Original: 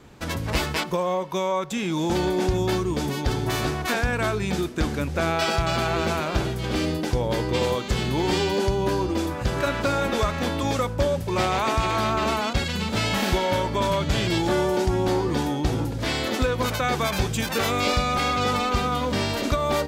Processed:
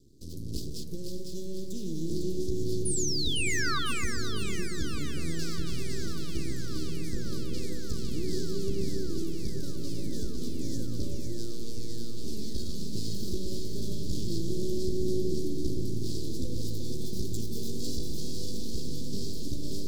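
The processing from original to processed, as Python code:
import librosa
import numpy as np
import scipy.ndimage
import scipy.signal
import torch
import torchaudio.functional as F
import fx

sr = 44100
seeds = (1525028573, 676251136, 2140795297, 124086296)

p1 = np.maximum(x, 0.0)
p2 = fx.robotise(p1, sr, hz=116.0, at=(11.14, 12.24))
p3 = scipy.signal.sosfilt(scipy.signal.ellip(3, 1.0, 50, [380.0, 4500.0], 'bandstop', fs=sr, output='sos'), p2)
p4 = fx.spec_paint(p3, sr, seeds[0], shape='fall', start_s=2.85, length_s=0.94, low_hz=1100.0, high_hz=10000.0, level_db=-27.0)
p5 = p4 + fx.echo_split(p4, sr, split_hz=1800.0, low_ms=127, high_ms=503, feedback_pct=52, wet_db=-4.5, dry=0)
p6 = fx.echo_crushed(p5, sr, ms=598, feedback_pct=80, bits=8, wet_db=-13.5)
y = p6 * 10.0 ** (-5.5 / 20.0)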